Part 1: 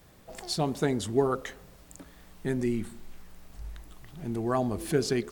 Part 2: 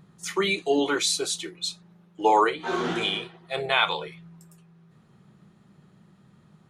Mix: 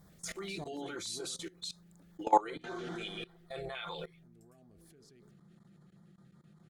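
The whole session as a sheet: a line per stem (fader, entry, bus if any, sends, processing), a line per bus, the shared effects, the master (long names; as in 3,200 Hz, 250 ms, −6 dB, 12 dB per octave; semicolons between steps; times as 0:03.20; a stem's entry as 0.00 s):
0.0 dB, 0.00 s, no send, downward compressor 10 to 1, threshold −31 dBFS, peak gain reduction 13 dB; soft clipping −24.5 dBFS, distortion −23 dB; automatic ducking −13 dB, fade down 1.70 s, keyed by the second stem
−3.5 dB, 0.00 s, no send, comb filter 5.8 ms, depth 46%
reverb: not used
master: output level in coarse steps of 20 dB; auto-filter notch square 5.2 Hz 980–2,700 Hz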